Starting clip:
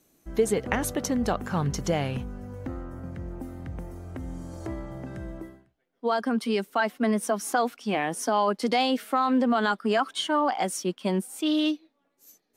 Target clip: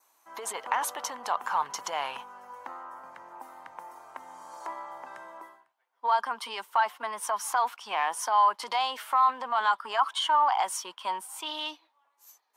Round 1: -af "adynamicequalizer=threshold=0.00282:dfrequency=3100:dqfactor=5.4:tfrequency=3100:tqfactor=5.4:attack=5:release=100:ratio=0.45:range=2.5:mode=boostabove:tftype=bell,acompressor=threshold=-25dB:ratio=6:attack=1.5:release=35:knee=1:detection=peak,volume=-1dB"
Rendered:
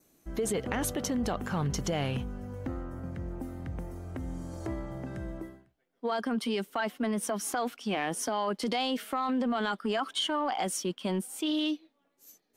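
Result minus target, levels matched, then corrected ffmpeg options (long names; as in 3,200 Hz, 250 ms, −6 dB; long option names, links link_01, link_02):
1,000 Hz band −5.5 dB
-af "adynamicequalizer=threshold=0.00282:dfrequency=3100:dqfactor=5.4:tfrequency=3100:tqfactor=5.4:attack=5:release=100:ratio=0.45:range=2.5:mode=boostabove:tftype=bell,acompressor=threshold=-25dB:ratio=6:attack=1.5:release=35:knee=1:detection=peak,highpass=frequency=960:width_type=q:width=6.3,volume=-1dB"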